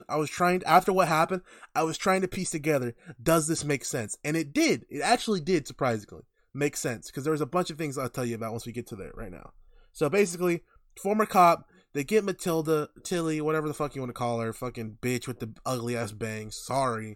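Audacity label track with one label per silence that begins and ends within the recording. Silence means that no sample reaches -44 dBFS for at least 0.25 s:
6.200000	6.550000	silence
9.490000	9.960000	silence
10.590000	10.970000	silence
11.620000	11.950000	silence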